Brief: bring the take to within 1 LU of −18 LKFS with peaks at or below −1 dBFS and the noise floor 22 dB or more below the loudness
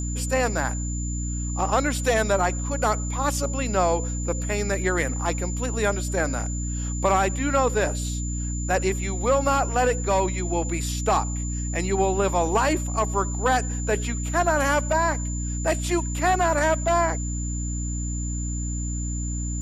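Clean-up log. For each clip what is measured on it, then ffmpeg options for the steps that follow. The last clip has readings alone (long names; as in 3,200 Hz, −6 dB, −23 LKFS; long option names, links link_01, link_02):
mains hum 60 Hz; hum harmonics up to 300 Hz; level of the hum −26 dBFS; interfering tone 7,100 Hz; level of the tone −34 dBFS; integrated loudness −24.5 LKFS; sample peak −8.0 dBFS; target loudness −18.0 LKFS
→ -af "bandreject=frequency=60:width_type=h:width=6,bandreject=frequency=120:width_type=h:width=6,bandreject=frequency=180:width_type=h:width=6,bandreject=frequency=240:width_type=h:width=6,bandreject=frequency=300:width_type=h:width=6"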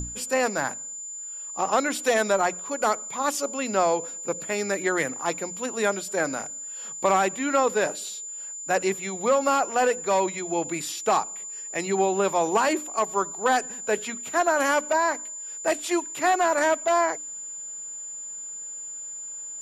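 mains hum none found; interfering tone 7,100 Hz; level of the tone −34 dBFS
→ -af "bandreject=frequency=7100:width=30"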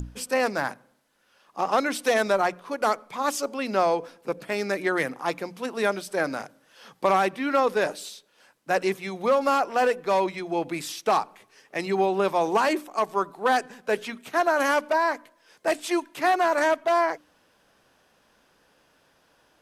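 interfering tone none found; integrated loudness −25.5 LKFS; sample peak −10.0 dBFS; target loudness −18.0 LKFS
→ -af "volume=7.5dB"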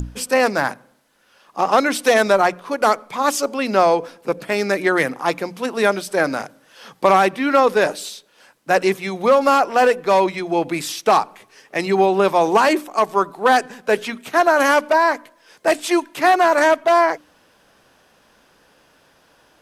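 integrated loudness −18.0 LKFS; sample peak −2.5 dBFS; background noise floor −57 dBFS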